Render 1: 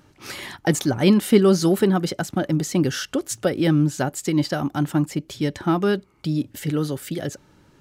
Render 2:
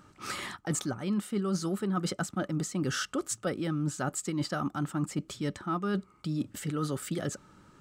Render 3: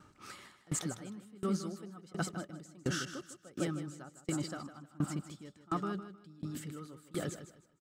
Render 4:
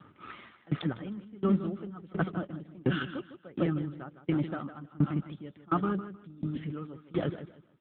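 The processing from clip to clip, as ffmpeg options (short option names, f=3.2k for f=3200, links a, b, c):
-af "equalizer=f=200:t=o:w=0.33:g=6,equalizer=f=1.25k:t=o:w=0.33:g=12,equalizer=f=8k:t=o:w=0.33:g=7,equalizer=f=12.5k:t=o:w=0.33:g=-6,areverse,acompressor=threshold=-23dB:ratio=10,areverse,volume=-4.5dB"
-af "aecho=1:1:155|310|465|620|775|930:0.501|0.251|0.125|0.0626|0.0313|0.0157,aeval=exprs='val(0)*pow(10,-27*if(lt(mod(1.4*n/s,1),2*abs(1.4)/1000),1-mod(1.4*n/s,1)/(2*abs(1.4)/1000),(mod(1.4*n/s,1)-2*abs(1.4)/1000)/(1-2*abs(1.4)/1000))/20)':c=same,volume=-1dB"
-af "volume=7.5dB" -ar 8000 -c:a libopencore_amrnb -b:a 7400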